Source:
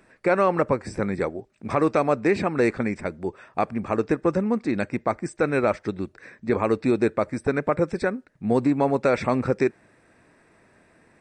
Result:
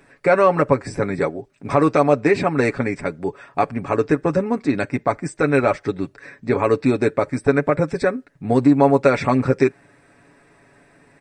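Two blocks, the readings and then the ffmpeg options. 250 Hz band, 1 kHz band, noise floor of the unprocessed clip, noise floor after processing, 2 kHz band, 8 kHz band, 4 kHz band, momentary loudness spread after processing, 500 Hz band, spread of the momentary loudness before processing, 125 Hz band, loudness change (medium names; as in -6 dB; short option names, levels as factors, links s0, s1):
+4.5 dB, +5.0 dB, -60 dBFS, -56 dBFS, +5.0 dB, +5.0 dB, +5.0 dB, 10 LU, +5.0 dB, 9 LU, +6.0 dB, +5.0 dB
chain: -af "aecho=1:1:7.1:0.61,volume=1.5"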